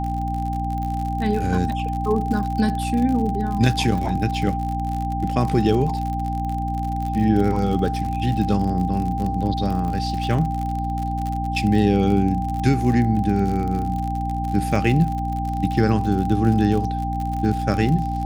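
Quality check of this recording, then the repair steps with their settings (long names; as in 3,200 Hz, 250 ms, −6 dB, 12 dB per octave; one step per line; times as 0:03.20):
surface crackle 55 per second −26 dBFS
mains hum 60 Hz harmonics 5 −26 dBFS
whistle 790 Hz −26 dBFS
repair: click removal
hum removal 60 Hz, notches 5
notch filter 790 Hz, Q 30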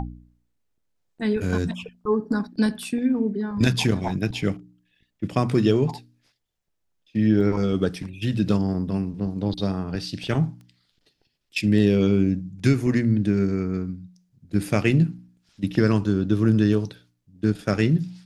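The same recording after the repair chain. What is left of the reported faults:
none of them is left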